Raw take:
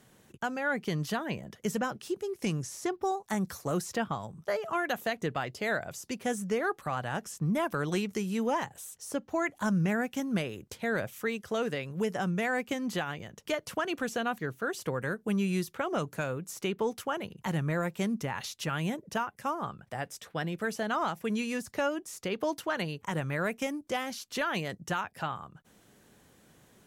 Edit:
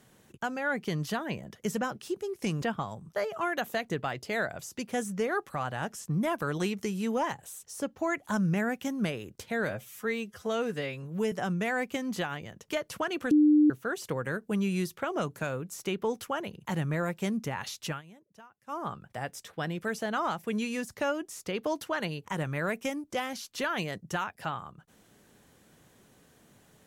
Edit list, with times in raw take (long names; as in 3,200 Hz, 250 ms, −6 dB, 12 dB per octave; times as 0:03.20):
0:02.62–0:03.94: remove
0:10.99–0:12.09: time-stretch 1.5×
0:14.08–0:14.47: beep over 300 Hz −17 dBFS
0:18.66–0:19.56: duck −21 dB, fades 0.13 s